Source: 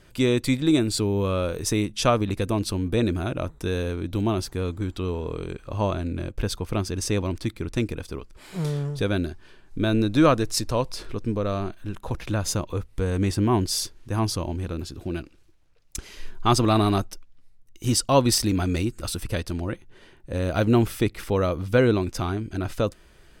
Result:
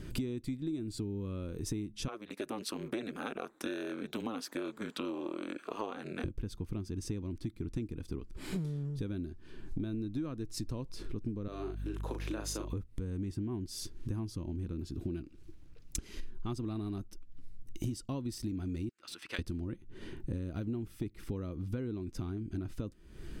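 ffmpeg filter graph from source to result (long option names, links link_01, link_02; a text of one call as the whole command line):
ffmpeg -i in.wav -filter_complex "[0:a]asettb=1/sr,asplit=3[link_01][link_02][link_03];[link_01]atrim=end=2.084[link_04];[link_02]atrim=start=2.08:end=6.24,asetpts=PTS-STARTPTS,afade=type=in:duration=0.004:curve=qsin,afade=type=out:start_time=4.156:duration=0.004:curve=qsin,highpass=frequency=450:width=0.5412,highpass=frequency=450:width=1.3066,aeval=exprs='val(0)*sin(2*PI*110*n/s)':channel_layout=same,equalizer=frequency=1600:width_type=o:width=1.5:gain=5.5[link_05];[link_03]atrim=start=6.236[link_06];[link_04][link_05]acrossfade=duration=0.004:curve1=hsin:curve2=qsin[link_07];[link_07][link_06]acrossfade=duration=0.004:curve1=qsin:curve2=hsin,asettb=1/sr,asplit=3[link_08][link_09][link_10];[link_08]atrim=end=11.484[link_11];[link_09]atrim=start=11.48:end=12.73,asetpts=PTS-STARTPTS,afade=type=in:duration=0.004:curve=qsin,afade=type=out:start_time=1.246:duration=0.004:curve=qsin,highpass=frequency=360:width=0.5412,highpass=frequency=360:width=1.3066,aeval=exprs='val(0)+0.00794*(sin(2*PI*50*n/s)+sin(2*PI*2*50*n/s)/2+sin(2*PI*3*50*n/s)/3+sin(2*PI*4*50*n/s)/4+sin(2*PI*5*50*n/s)/5)':channel_layout=same,asplit=2[link_12][link_13];[link_13]adelay=38,volume=-5dB[link_14];[link_12][link_14]amix=inputs=2:normalize=0,atrim=end_sample=55125[link_15];[link_10]atrim=start=12.726[link_16];[link_11][link_15]acrossfade=duration=0.004:curve1=hsin:curve2=qsin[link_17];[link_17][link_16]acrossfade=duration=0.004:curve1=qsin:curve2=hsin,asettb=1/sr,asplit=3[link_18][link_19][link_20];[link_18]atrim=end=18.894[link_21];[link_19]atrim=start=18.89:end=19.39,asetpts=PTS-STARTPTS,afade=type=in:duration=0.004:curve=qsin,afade=type=out:start_time=0.496:duration=0.004:curve=qsin,highpass=1300,equalizer=frequency=8200:width_type=o:width=1.3:gain=-6,adynamicsmooth=sensitivity=7:basefreq=5200[link_22];[link_20]atrim=start=19.386[link_23];[link_21][link_22]acrossfade=duration=0.004:curve1=hsin:curve2=qsin[link_24];[link_24][link_23]acrossfade=duration=0.004:curve1=qsin:curve2=hsin,lowshelf=frequency=430:width_type=q:width=1.5:gain=9.5,acompressor=threshold=-35dB:ratio=16,volume=1dB" out.wav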